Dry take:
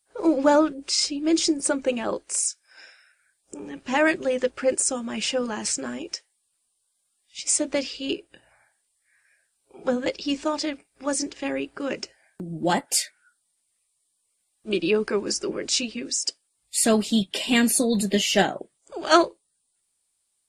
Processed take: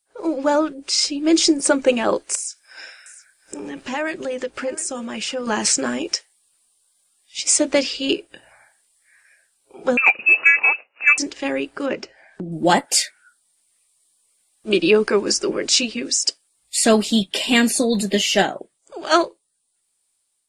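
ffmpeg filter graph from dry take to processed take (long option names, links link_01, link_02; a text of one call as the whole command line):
ffmpeg -i in.wav -filter_complex "[0:a]asettb=1/sr,asplit=3[link_01][link_02][link_03];[link_01]atrim=end=2.354[link_04];[link_02]atrim=start=2.35:end=5.47,asetpts=PTS-STARTPTS,afade=type=in:duration=0.004:curve=qsin,afade=type=out:start_time=3.116:duration=0.004:curve=qsin,acompressor=threshold=-38dB:ratio=2.5:attack=3.2:release=140:knee=1:detection=peak,aecho=1:1:710:0.126,atrim=end_sample=137592[link_05];[link_03]atrim=start=5.466[link_06];[link_04][link_05]acrossfade=duration=0.004:curve1=hsin:curve2=qsin[link_07];[link_07][link_06]acrossfade=duration=0.004:curve1=qsin:curve2=hsin,asettb=1/sr,asplit=3[link_08][link_09][link_10];[link_08]atrim=end=9.974[link_11];[link_09]atrim=start=9.97:end=11.18,asetpts=PTS-STARTPTS,afade=type=in:duration=0.004:curve=qsin,afade=type=out:start_time=1.206:duration=0.004:curve=qsin,lowpass=frequency=2500:width_type=q:width=0.5098,lowpass=frequency=2500:width_type=q:width=0.6013,lowpass=frequency=2500:width_type=q:width=0.9,lowpass=frequency=2500:width_type=q:width=2.563,afreqshift=-2900,acontrast=65,highpass=250[link_12];[link_10]atrim=start=11.176[link_13];[link_11][link_12]acrossfade=duration=0.004:curve1=hsin:curve2=qsin[link_14];[link_14][link_13]acrossfade=duration=0.004:curve1=qsin:curve2=hsin,asettb=1/sr,asplit=3[link_15][link_16][link_17];[link_15]atrim=end=11.864[link_18];[link_16]atrim=start=11.86:end=12.52,asetpts=PTS-STARTPTS,afade=type=in:duration=0.004:curve=qsin,afade=type=out:start_time=0.656:duration=0.004:curve=qsin,lowpass=7400,aemphasis=mode=reproduction:type=75kf,acompressor=mode=upward:threshold=-47dB:ratio=2.5:attack=3.2:release=140:knee=2.83:detection=peak[link_19];[link_17]atrim=start=12.516[link_20];[link_18][link_19]acrossfade=duration=0.004:curve1=hsin:curve2=qsin[link_21];[link_21][link_20]acrossfade=duration=0.004:curve1=qsin:curve2=hsin,acrossover=split=8700[link_22][link_23];[link_23]acompressor=threshold=-40dB:ratio=4:attack=1:release=60[link_24];[link_22][link_24]amix=inputs=2:normalize=0,equalizer=frequency=65:width=0.36:gain=-6,dynaudnorm=framelen=300:gausssize=5:maxgain=11.5dB,volume=-1dB" out.wav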